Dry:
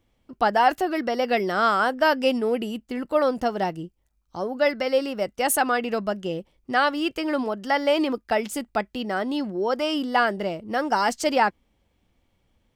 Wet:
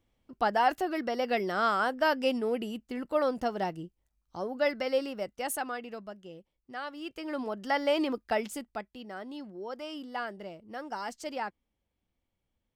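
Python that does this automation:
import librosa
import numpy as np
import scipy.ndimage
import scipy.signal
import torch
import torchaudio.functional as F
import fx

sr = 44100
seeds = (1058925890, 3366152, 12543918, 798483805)

y = fx.gain(x, sr, db=fx.line((4.96, -6.5), (6.22, -18.0), (6.82, -18.0), (7.6, -6.0), (8.42, -6.0), (8.9, -15.0)))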